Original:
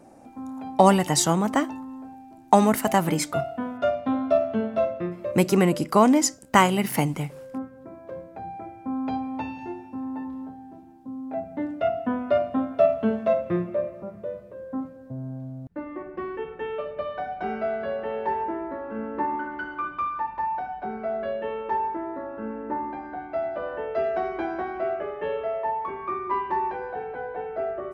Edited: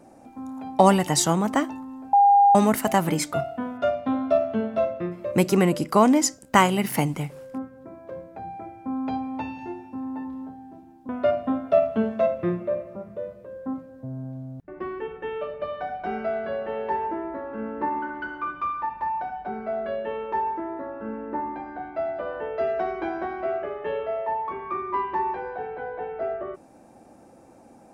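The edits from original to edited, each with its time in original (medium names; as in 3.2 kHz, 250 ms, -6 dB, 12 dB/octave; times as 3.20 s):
2.13–2.55 s: bleep 806 Hz -12 dBFS
11.09–12.16 s: delete
15.75–16.05 s: delete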